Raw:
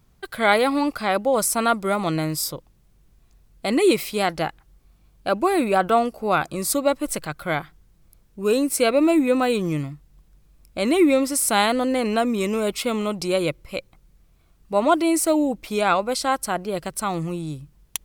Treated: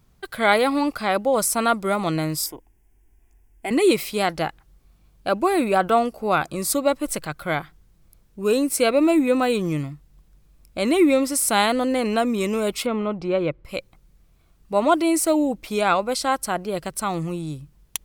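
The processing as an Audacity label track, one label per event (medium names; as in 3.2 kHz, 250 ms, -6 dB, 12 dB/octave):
2.460000	3.710000	static phaser centre 820 Hz, stages 8
12.860000	13.650000	low-pass 2 kHz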